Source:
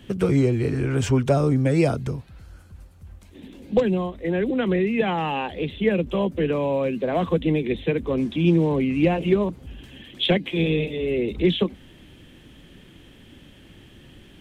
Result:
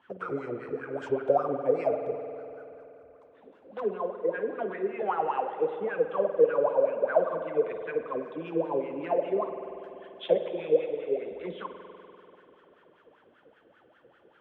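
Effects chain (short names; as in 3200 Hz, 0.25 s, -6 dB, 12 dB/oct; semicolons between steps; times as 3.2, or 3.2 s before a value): wah 5.1 Hz 450–1500 Hz, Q 12; spring tank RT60 3.1 s, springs 48 ms, chirp 25 ms, DRR 7 dB; gain +9 dB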